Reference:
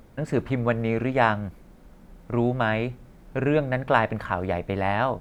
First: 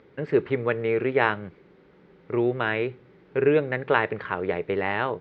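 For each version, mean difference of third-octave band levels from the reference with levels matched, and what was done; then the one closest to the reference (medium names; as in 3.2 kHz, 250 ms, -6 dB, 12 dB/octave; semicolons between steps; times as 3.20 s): 4.0 dB: cabinet simulation 160–4000 Hz, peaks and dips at 230 Hz -9 dB, 410 Hz +10 dB, 670 Hz -9 dB, 1 kHz -3 dB, 2 kHz +4 dB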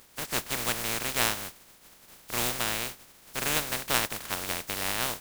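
15.0 dB: spectral contrast reduction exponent 0.19; trim -6 dB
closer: first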